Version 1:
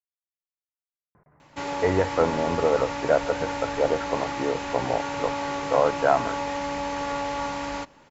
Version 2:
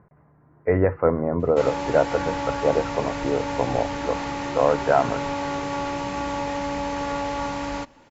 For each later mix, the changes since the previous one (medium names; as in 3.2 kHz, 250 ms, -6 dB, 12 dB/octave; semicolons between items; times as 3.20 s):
speech: entry -1.15 s; master: add bass shelf 370 Hz +6 dB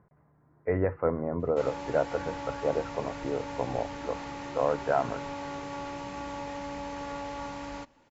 speech -7.5 dB; background -10.0 dB